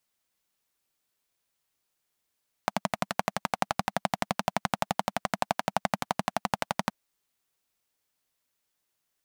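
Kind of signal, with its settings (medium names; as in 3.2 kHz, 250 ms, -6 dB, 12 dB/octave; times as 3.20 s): single-cylinder engine model, steady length 4.22 s, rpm 1400, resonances 200/730 Hz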